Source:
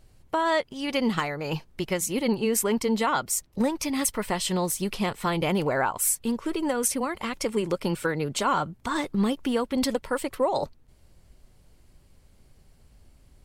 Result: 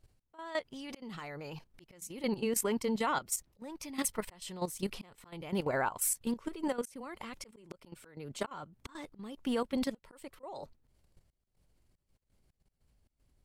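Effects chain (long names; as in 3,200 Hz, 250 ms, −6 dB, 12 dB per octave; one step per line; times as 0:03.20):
volume swells 358 ms
output level in coarse steps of 13 dB
level −4.5 dB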